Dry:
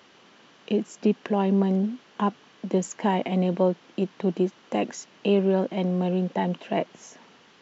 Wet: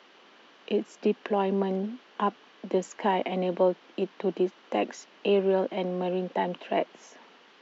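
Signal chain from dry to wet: three-band isolator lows -23 dB, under 230 Hz, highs -16 dB, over 5.5 kHz

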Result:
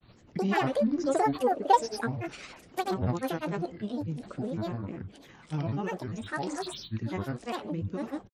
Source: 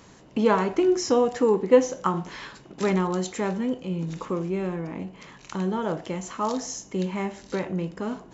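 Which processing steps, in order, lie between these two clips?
rotary cabinet horn 6.3 Hz, later 1.1 Hz, at 2.89 s; granulator 100 ms, pitch spread up and down by 12 st; trim -2 dB

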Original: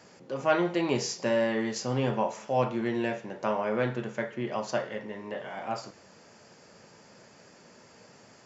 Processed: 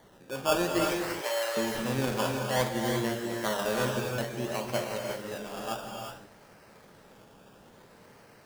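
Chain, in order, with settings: decimation with a swept rate 17×, swing 60% 0.58 Hz; 0.84–1.57 s: high-pass 560 Hz 24 dB/octave; gated-style reverb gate 390 ms rising, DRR 1.5 dB; trim -2.5 dB

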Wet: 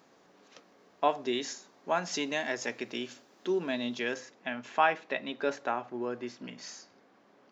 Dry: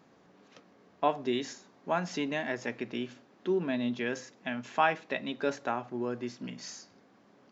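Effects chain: tone controls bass -9 dB, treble +5 dB, from 2.12 s treble +11 dB, from 4.13 s treble -3 dB; trim +1 dB

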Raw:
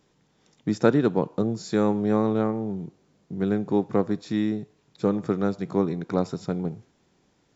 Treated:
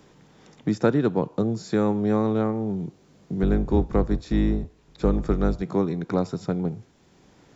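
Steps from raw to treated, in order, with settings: 3.42–5.62 s: octave divider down 2 oct, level +3 dB; three bands compressed up and down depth 40%

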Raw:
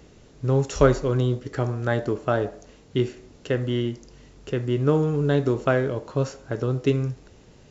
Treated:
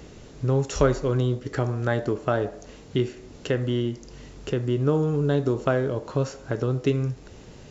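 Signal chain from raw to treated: 3.62–6.08 s: dynamic bell 2.1 kHz, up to -5 dB, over -44 dBFS, Q 1.8; compression 1.5:1, threshold -38 dBFS, peak gain reduction 9.5 dB; trim +6 dB

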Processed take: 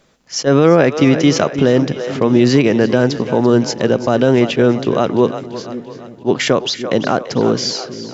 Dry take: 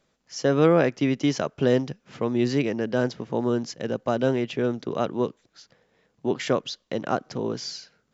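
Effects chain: two-band feedback delay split 400 Hz, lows 541 ms, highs 340 ms, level -14.5 dB; loudness maximiser +15 dB; attacks held to a fixed rise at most 420 dB/s; trim -1 dB

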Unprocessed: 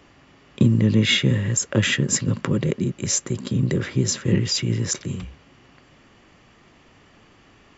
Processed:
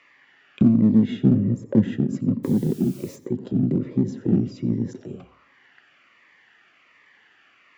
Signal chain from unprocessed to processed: 1.24–1.88 s: tilt shelf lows +4 dB, about 1.2 kHz; 4.34–5.05 s: whistle 5.6 kHz -46 dBFS; auto-wah 250–2000 Hz, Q 2.4, down, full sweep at -20 dBFS; in parallel at -7 dB: hard clipper -25 dBFS, distortion -6 dB; 2.43–3.15 s: on the sum: added noise white -53 dBFS; reverberation RT60 0.45 s, pre-delay 77 ms, DRR 18 dB; Shepard-style phaser falling 1.3 Hz; trim +4 dB

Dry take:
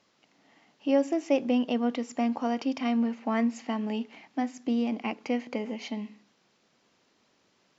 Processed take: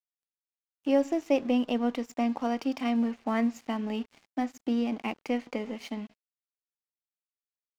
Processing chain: crossover distortion -47.5 dBFS

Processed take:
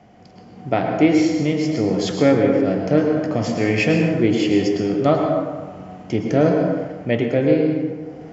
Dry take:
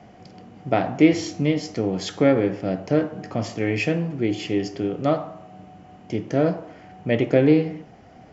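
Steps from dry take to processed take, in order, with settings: plate-style reverb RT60 1.4 s, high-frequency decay 0.5×, pre-delay 95 ms, DRR 2.5 dB; level rider; trim -2.5 dB

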